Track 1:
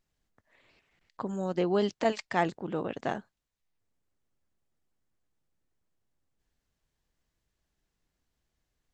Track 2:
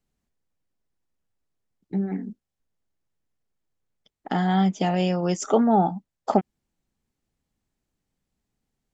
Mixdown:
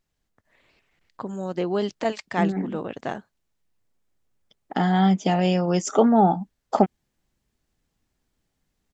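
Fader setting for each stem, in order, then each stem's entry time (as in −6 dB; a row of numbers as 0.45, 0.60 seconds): +2.0, +2.0 decibels; 0.00, 0.45 seconds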